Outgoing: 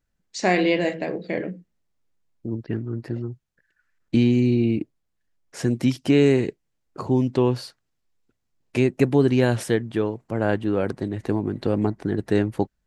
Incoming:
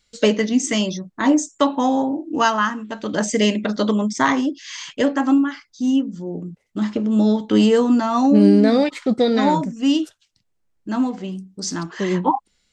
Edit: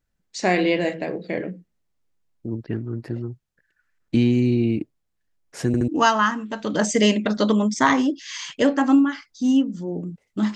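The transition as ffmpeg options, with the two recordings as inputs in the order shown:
ffmpeg -i cue0.wav -i cue1.wav -filter_complex "[0:a]apad=whole_dur=10.55,atrim=end=10.55,asplit=3[link_01][link_02][link_03];[link_01]atrim=end=5.742[link_04];[link_02]atrim=start=5.668:end=5.742[link_05];[link_03]atrim=start=5.668:end=5.742[link_06];[1:a]atrim=start=2.268:end=6.94[link_07];[link_04][link_05]acrossfade=duration=0.004:curve1=hsin:curve2=hsin[link_08];[link_08][link_06]acrossfade=duration=0.004:curve1=hsin:curve2=hsin[link_09];[link_09][link_07]acrossfade=duration=0.004:curve1=hsin:curve2=hsin" out.wav

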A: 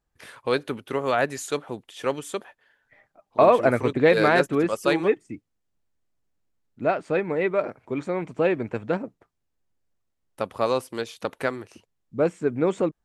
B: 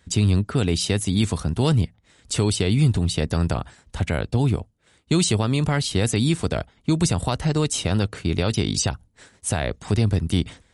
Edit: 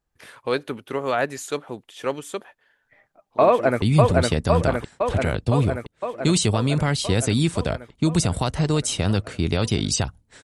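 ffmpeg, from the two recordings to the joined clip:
ffmpeg -i cue0.wav -i cue1.wav -filter_complex "[0:a]apad=whole_dur=10.43,atrim=end=10.43,atrim=end=3.822[link_01];[1:a]atrim=start=2.678:end=9.29[link_02];[link_01][link_02]acrossfade=duration=0.004:curve1=hsin:curve2=hsin,asplit=2[link_03][link_04];[link_04]afade=type=in:start_time=3.47:duration=0.01,afade=type=out:start_time=3.82:duration=0.01,aecho=0:1:510|1020|1530|2040|2550|3060|3570|4080|4590|5100|5610|6120:0.891251|0.668438|0.501329|0.375996|0.281997|0.211498|0.158624|0.118968|0.0892257|0.0669193|0.0501895|0.0376421[link_05];[link_03][link_05]amix=inputs=2:normalize=0" out.wav

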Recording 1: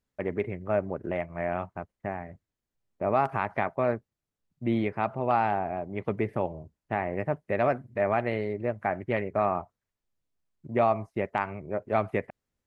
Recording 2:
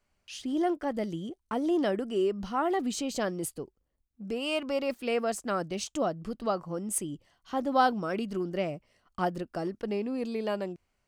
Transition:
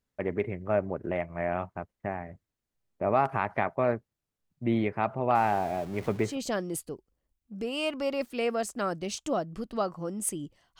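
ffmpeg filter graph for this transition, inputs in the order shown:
ffmpeg -i cue0.wav -i cue1.wav -filter_complex "[0:a]asettb=1/sr,asplit=3[link_01][link_02][link_03];[link_01]atrim=end=5.354[link_04];[link_02]atrim=start=5.35:end=6.38,asetpts=PTS-STARTPTS,afade=type=in:duration=0.004:curve=qsin,afade=type=out:start_time=1.026:duration=0.004:curve=qsin,aeval=exprs='val(0)+0.5*0.00944*sgn(val(0))':channel_layout=same[link_05];[link_03]atrim=start=6.376[link_06];[link_04][link_05]acrossfade=duration=0.004:curve1=hsin:curve2=qsin[link_07];[link_07][link_06]acrossfade=duration=0.004:curve1=qsin:curve2=hsin,apad=whole_dur=10.79,atrim=end=10.79,atrim=end=6.38,asetpts=PTS-STARTPTS[link_08];[1:a]atrim=start=2.91:end=7.48,asetpts=PTS-STARTPTS[link_09];[link_08][link_09]acrossfade=duration=0.16:curve1=tri:curve2=tri" out.wav

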